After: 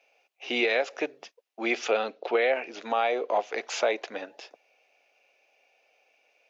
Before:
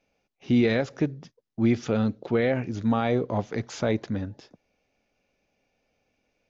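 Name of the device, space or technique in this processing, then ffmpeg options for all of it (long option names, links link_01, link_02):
laptop speaker: -filter_complex "[0:a]asettb=1/sr,asplit=3[link_01][link_02][link_03];[link_01]atrim=end=1.914[link_04];[link_02]atrim=start=1.91:end=2.8,asetpts=PTS-STARTPTS,afade=type=in:duration=0.004:curve=qsin,afade=type=out:start_time=0.886:duration=0.004:curve=qsin,lowpass=frequency=5800:width=0.5412,lowpass=frequency=5800:width=1.3066[link_05];[link_03]atrim=start=2.796[link_06];[link_04][link_05]acrossfade=duration=0.004:curve1=hsin:curve2=qsin[link_07];[link_07][link_06]acrossfade=duration=0.004:curve1=qsin:curve2=hsin,highpass=frequency=440:width=0.5412,highpass=frequency=440:width=1.3066,equalizer=frequency=720:width_type=o:width=0.43:gain=5,equalizer=frequency=2600:width_type=o:width=0.52:gain=9,alimiter=limit=-19dB:level=0:latency=1:release=389,volume=4.5dB"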